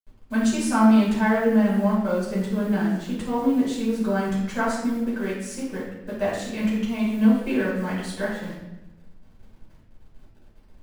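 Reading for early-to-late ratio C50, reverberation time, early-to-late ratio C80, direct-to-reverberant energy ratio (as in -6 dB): 1.5 dB, 0.95 s, 5.0 dB, -8.0 dB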